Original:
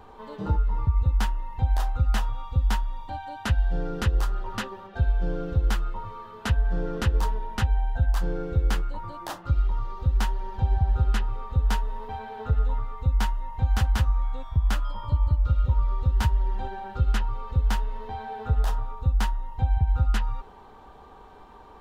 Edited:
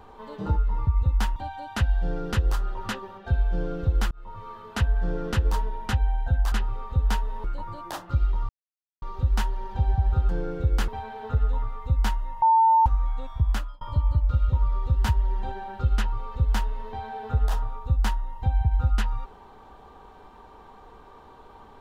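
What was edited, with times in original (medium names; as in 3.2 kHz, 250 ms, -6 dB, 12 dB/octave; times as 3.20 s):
1.36–3.05 s: delete
5.80–6.18 s: fade in
8.21–8.80 s: swap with 11.12–12.04 s
9.85 s: insert silence 0.53 s
13.58–14.02 s: bleep 898 Hz -14.5 dBFS
14.64–14.97 s: fade out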